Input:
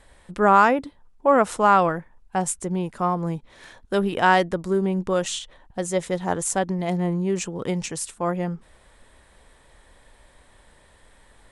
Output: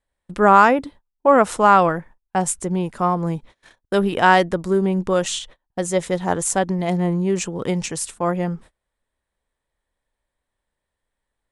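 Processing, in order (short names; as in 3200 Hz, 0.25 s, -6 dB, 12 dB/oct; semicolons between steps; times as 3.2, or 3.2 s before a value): gate -43 dBFS, range -30 dB; gain +3.5 dB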